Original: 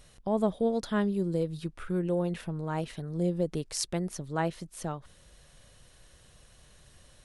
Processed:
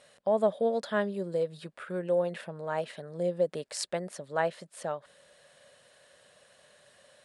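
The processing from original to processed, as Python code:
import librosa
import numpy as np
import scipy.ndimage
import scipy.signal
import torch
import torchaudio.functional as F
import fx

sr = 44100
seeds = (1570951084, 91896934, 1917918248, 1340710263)

y = fx.cabinet(x, sr, low_hz=270.0, low_slope=12, high_hz=9600.0, hz=(320.0, 580.0, 1700.0, 6000.0), db=(-9, 10, 5, -7))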